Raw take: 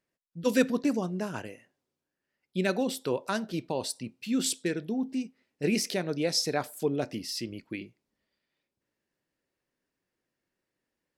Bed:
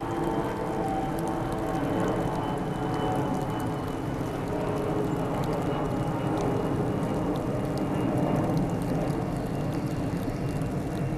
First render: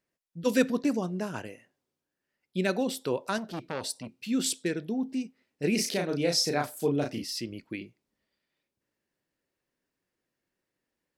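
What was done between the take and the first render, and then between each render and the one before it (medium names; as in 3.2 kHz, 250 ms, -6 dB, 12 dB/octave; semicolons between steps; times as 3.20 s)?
3.38–4.14 s: transformer saturation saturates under 1.2 kHz; 5.75–7.24 s: doubling 35 ms -3.5 dB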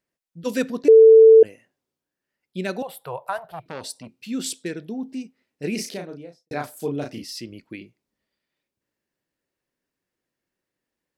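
0.88–1.43 s: bleep 445 Hz -6 dBFS; 2.82–3.66 s: FFT filter 160 Hz 0 dB, 230 Hz -29 dB, 720 Hz +9 dB, 3.8 kHz -8 dB, 6.2 kHz -19 dB, 11 kHz +3 dB; 5.70–6.51 s: studio fade out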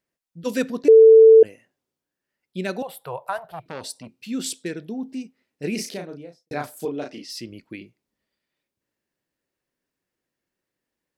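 6.85–7.30 s: band-pass 260–6200 Hz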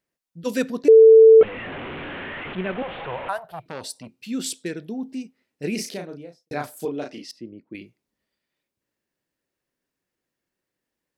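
1.41–3.29 s: one-bit delta coder 16 kbps, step -27 dBFS; 7.31–7.75 s: band-pass filter 310 Hz, Q 0.75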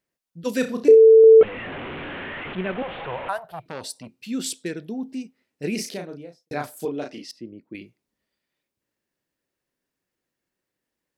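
0.59–1.24 s: flutter echo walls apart 5.5 m, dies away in 0.27 s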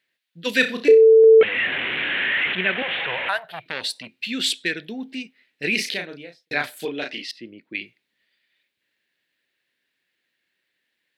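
high-pass 190 Hz 6 dB/octave; high-order bell 2.6 kHz +14.5 dB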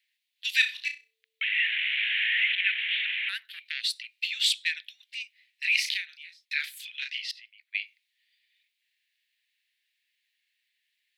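steep high-pass 2 kHz 36 dB/octave; dynamic bell 9 kHz, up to -4 dB, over -44 dBFS, Q 0.72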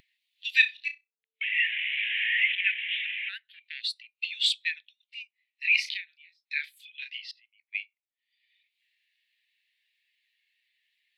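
upward compressor, threshold -39 dBFS; spectral contrast expander 1.5:1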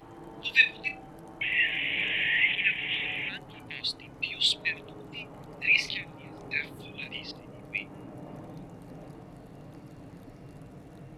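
add bed -18 dB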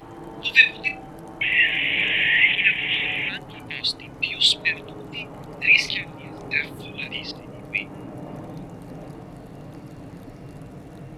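trim +7.5 dB; peak limiter -1 dBFS, peak gain reduction 1.5 dB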